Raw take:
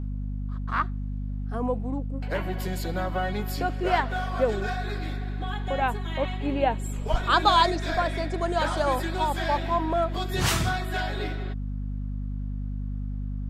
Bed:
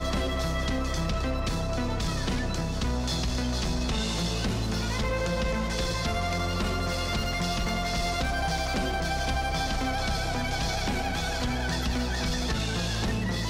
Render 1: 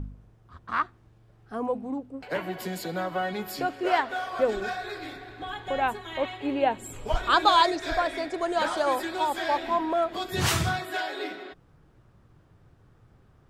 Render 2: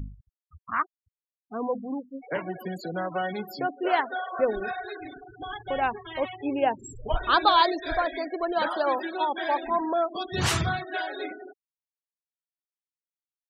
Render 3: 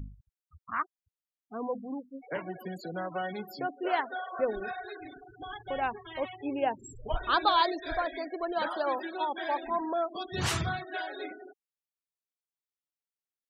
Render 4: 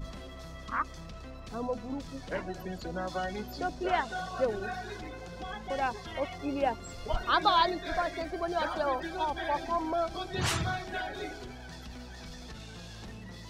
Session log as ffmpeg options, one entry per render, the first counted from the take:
-af "bandreject=f=50:t=h:w=4,bandreject=f=100:t=h:w=4,bandreject=f=150:t=h:w=4,bandreject=f=200:t=h:w=4,bandreject=f=250:t=h:w=4"
-af "afftfilt=real='re*gte(hypot(re,im),0.0251)':imag='im*gte(hypot(re,im),0.0251)':win_size=1024:overlap=0.75"
-af "volume=-5dB"
-filter_complex "[1:a]volume=-16.5dB[a];[0:a][a]amix=inputs=2:normalize=0"

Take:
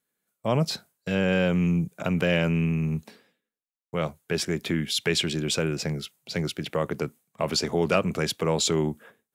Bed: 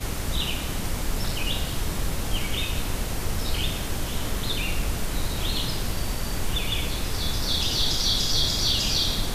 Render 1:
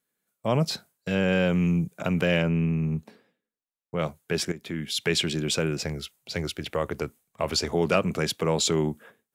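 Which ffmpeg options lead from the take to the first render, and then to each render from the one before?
-filter_complex "[0:a]asettb=1/sr,asplit=3[a][b][c];[a]atrim=end=2.424[d];[b]atrim=start=2.42:end=3.99,asetpts=PTS-STARTPTS,afade=t=in:d=0.004:c=qsin,afade=t=out:st=1.566:d=0.004:c=qsin,highshelf=f=2k:g=-9.5[e];[c]atrim=start=3.986[f];[d][e]acrossfade=d=0.004:c1=hsin:c2=qsin[g];[g][f]acrossfade=d=0.004:c1=qsin:c2=hsin,asplit=3[h][i][j];[h]afade=t=out:st=5.82:d=0.02[k];[i]asubboost=boost=9:cutoff=53,afade=t=in:st=5.82:d=0.02,afade=t=out:st=7.73:d=0.02[l];[j]afade=t=in:st=7.73:d=0.02[m];[k][l][m]amix=inputs=3:normalize=0,asplit=2[n][o];[n]atrim=end=4.52,asetpts=PTS-STARTPTS,afade=t=out:st=4.516:d=0.004:c=hsin:silence=0.199526[p];[o]atrim=start=4.52,asetpts=PTS-STARTPTS,afade=t=in:d=0.59:silence=0.199526[q];[p][q]concat=n=2:v=0:a=1"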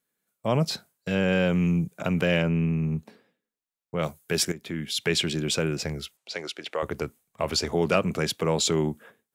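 -filter_complex "[0:a]asettb=1/sr,asplit=3[a][b][c];[a]atrim=end=4.034[d];[b]atrim=start=4.03:end=4.54,asetpts=PTS-STARTPTS,afade=t=in:d=0.004:c=qsin,afade=t=out:st=0.506:d=0.004:c=qsin,highshelf=f=5.8k:g=11[e];[c]atrim=start=4.536[f];[d][e]acrossfade=d=0.004:c1=hsin:c2=qsin[g];[g][f]acrossfade=d=0.004:c1=qsin:c2=hsin,asettb=1/sr,asplit=3[h][i][j];[h]atrim=end=6.174[k];[i]atrim=start=6.17:end=6.83,asetpts=PTS-STARTPTS,afade=t=in:d=0.004:c=qsin,afade=t=out:st=0.656:d=0.004:c=qsin,highpass=410,lowpass=7.3k[l];[j]atrim=start=6.826[m];[k][l]acrossfade=d=0.004:c1=hsin:c2=qsin[n];[n][m]acrossfade=d=0.004:c1=qsin:c2=hsin"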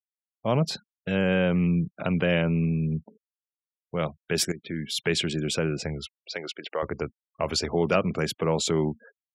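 -af "afftfilt=real='re*gte(hypot(re,im),0.00891)':imag='im*gte(hypot(re,im),0.00891)':win_size=1024:overlap=0.75,adynamicequalizer=threshold=0.00794:dfrequency=2300:dqfactor=0.7:tfrequency=2300:tqfactor=0.7:attack=5:release=100:ratio=0.375:range=2:mode=cutabove:tftype=highshelf"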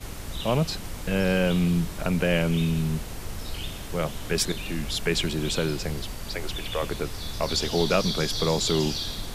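-filter_complex "[1:a]volume=-7.5dB[a];[0:a][a]amix=inputs=2:normalize=0"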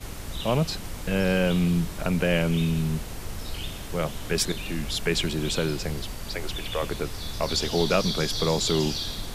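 -af anull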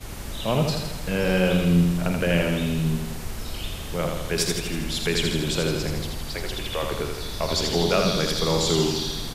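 -filter_complex "[0:a]asplit=2[a][b];[b]adelay=46,volume=-12.5dB[c];[a][c]amix=inputs=2:normalize=0,asplit=2[d][e];[e]aecho=0:1:81|162|243|324|405|486|567|648:0.596|0.351|0.207|0.122|0.0722|0.0426|0.0251|0.0148[f];[d][f]amix=inputs=2:normalize=0"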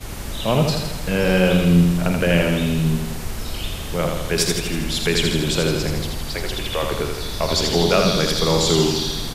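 -af "volume=4.5dB"

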